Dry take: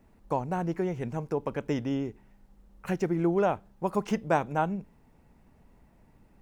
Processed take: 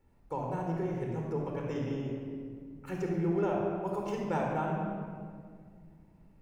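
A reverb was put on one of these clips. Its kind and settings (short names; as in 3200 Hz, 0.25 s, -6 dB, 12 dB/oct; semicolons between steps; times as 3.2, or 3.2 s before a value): shoebox room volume 3600 m³, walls mixed, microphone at 4.3 m; gain -11 dB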